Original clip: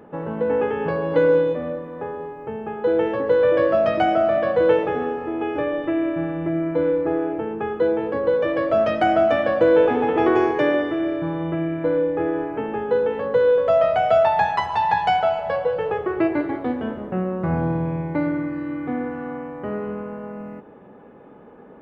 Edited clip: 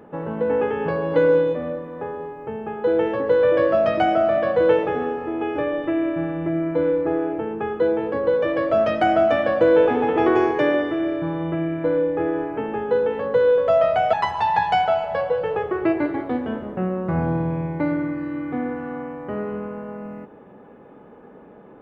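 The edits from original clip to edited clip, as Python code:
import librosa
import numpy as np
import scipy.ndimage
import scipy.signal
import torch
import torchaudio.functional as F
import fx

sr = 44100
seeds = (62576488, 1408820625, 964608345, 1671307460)

y = fx.edit(x, sr, fx.cut(start_s=14.13, length_s=0.35), tone=tone)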